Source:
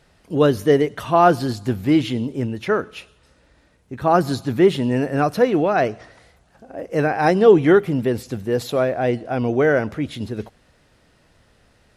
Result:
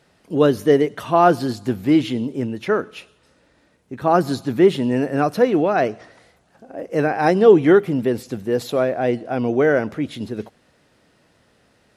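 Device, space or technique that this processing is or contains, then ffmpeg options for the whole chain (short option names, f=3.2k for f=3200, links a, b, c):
filter by subtraction: -filter_complex "[0:a]asplit=2[a][b];[b]lowpass=240,volume=-1[c];[a][c]amix=inputs=2:normalize=0,volume=-1dB"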